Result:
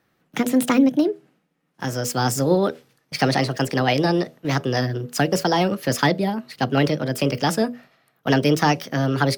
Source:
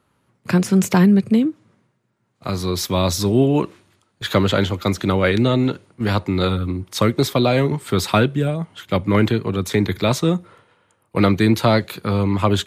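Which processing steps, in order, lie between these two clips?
hum notches 60/120/180/240/300/360/420/480 Hz; speed mistake 33 rpm record played at 45 rpm; trim -2 dB

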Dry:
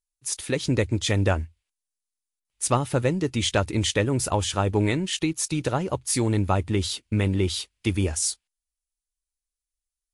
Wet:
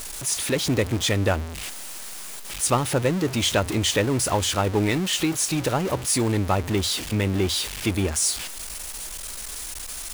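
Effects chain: jump at every zero crossing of -25 dBFS; bass shelf 110 Hz -7 dB

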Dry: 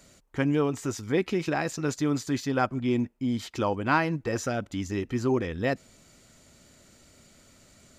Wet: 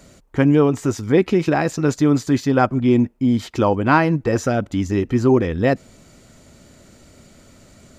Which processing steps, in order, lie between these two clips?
tilt shelf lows +3.5 dB, about 1.3 kHz; trim +7.5 dB

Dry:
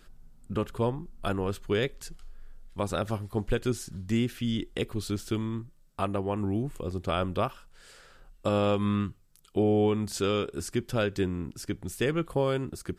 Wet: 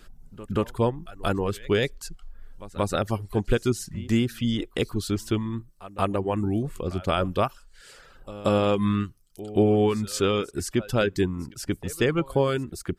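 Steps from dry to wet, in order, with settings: pre-echo 180 ms -17 dB; reverb removal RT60 0.6 s; trim +5 dB

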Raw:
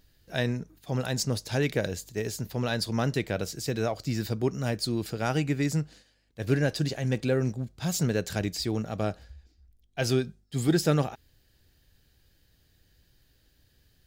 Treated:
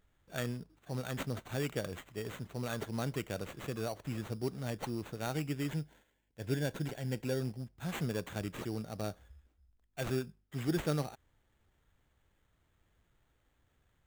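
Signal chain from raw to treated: sample-rate reducer 5.1 kHz, jitter 0%; 5.71–7.40 s: Butterworth band-stop 1.2 kHz, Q 5.5; trim -9 dB

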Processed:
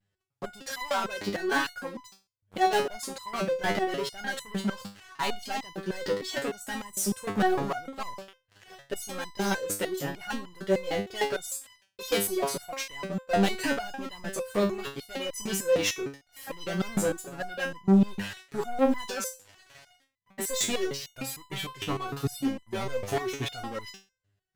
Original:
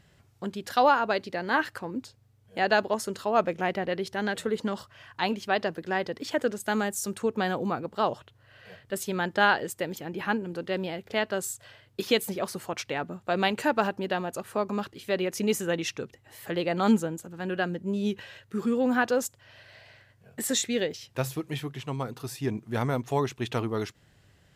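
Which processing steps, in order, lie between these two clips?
waveshaping leveller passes 5; vibrato 0.6 Hz 31 cents; resonator arpeggio 6.6 Hz 100–1000 Hz

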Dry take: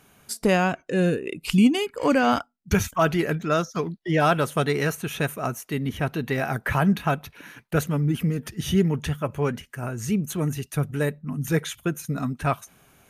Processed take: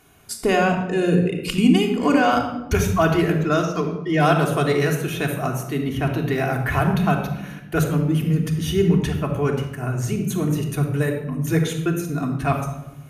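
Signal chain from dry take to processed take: simulated room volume 3900 m³, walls furnished, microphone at 3.3 m

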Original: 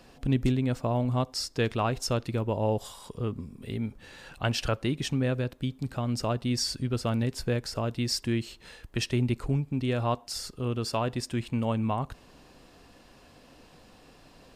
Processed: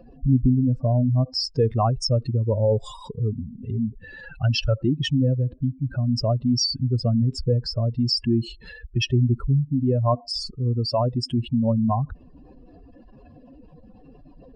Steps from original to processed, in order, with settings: spectral contrast enhancement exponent 2.8; resampled via 22.05 kHz; trim +7.5 dB

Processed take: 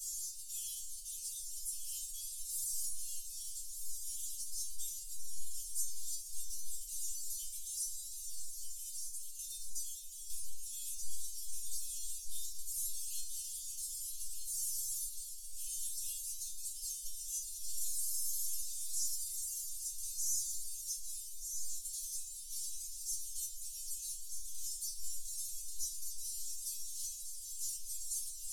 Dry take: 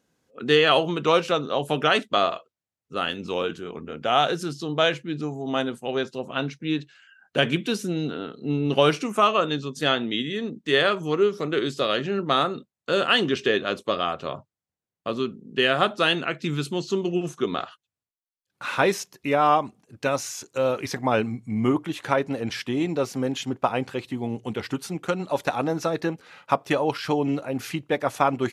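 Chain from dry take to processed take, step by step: one-bit delta coder 64 kbps, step -21.5 dBFS; inharmonic resonator 170 Hz, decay 0.62 s, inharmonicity 0.002; waveshaping leveller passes 1; treble shelf 5 kHz -6.5 dB; echo whose repeats swap between lows and highs 616 ms, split 1.7 kHz, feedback 63%, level -3 dB; 8.48–10.82 s: tremolo saw down 1.1 Hz, depth 50%; inverse Chebyshev band-stop 130–1700 Hz, stop band 70 dB; trim +10.5 dB

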